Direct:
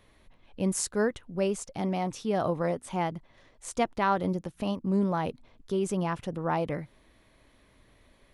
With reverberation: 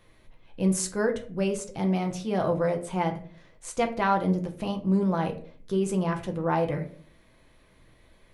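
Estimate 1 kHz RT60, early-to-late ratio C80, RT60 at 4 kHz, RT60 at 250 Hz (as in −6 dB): 0.40 s, 16.5 dB, 0.30 s, 0.65 s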